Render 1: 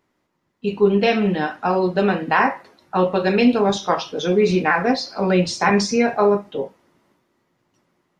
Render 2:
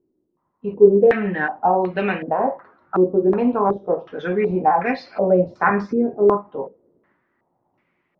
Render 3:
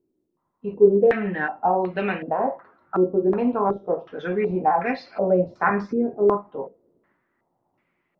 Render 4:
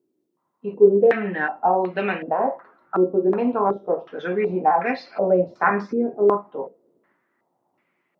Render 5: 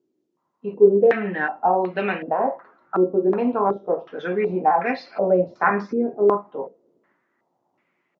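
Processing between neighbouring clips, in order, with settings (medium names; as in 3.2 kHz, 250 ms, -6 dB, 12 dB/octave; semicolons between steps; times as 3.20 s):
step-sequenced low-pass 2.7 Hz 360–2300 Hz; trim -4.5 dB
feedback comb 680 Hz, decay 0.28 s, mix 50%; trim +2.5 dB
Bessel high-pass 210 Hz, order 2; trim +2 dB
resampled via 16 kHz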